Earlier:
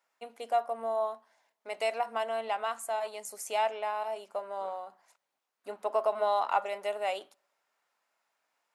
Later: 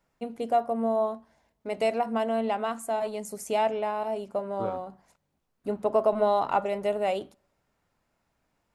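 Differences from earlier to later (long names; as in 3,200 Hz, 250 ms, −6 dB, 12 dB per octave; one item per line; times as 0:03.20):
second voice +10.5 dB
master: remove high-pass filter 770 Hz 12 dB per octave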